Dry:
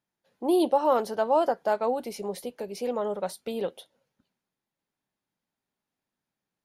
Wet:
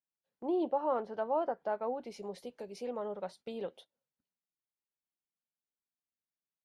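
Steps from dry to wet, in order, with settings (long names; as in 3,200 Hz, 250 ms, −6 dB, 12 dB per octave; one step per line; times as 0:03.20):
treble cut that deepens with the level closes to 2,000 Hz, closed at −23 dBFS
noise gate −46 dBFS, range −11 dB
level −9 dB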